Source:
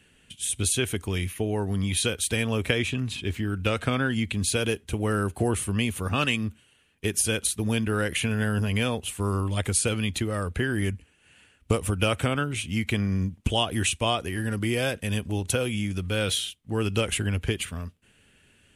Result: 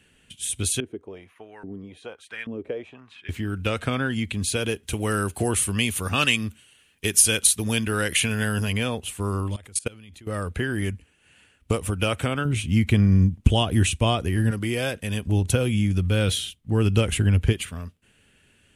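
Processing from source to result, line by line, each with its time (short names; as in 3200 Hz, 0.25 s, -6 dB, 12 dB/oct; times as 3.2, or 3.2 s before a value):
0.8–3.29 LFO band-pass saw up 1.2 Hz 250–2000 Hz
4.83–8.73 high shelf 2100 Hz +9 dB
9.56–10.27 level quantiser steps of 23 dB
12.45–14.51 low shelf 280 Hz +11 dB
15.27–17.53 low shelf 250 Hz +10 dB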